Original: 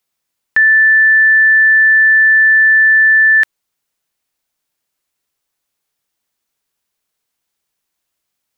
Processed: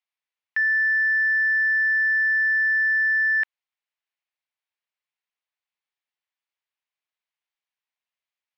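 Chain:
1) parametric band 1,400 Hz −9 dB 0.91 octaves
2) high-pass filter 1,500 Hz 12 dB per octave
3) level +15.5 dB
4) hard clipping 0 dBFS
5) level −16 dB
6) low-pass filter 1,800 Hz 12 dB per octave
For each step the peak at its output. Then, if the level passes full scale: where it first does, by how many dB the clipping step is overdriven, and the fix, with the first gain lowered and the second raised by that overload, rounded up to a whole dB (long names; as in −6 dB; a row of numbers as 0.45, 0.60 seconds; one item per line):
−8.5, −8.0, +7.5, 0.0, −16.0, −17.5 dBFS
step 3, 7.5 dB
step 3 +7.5 dB, step 5 −8 dB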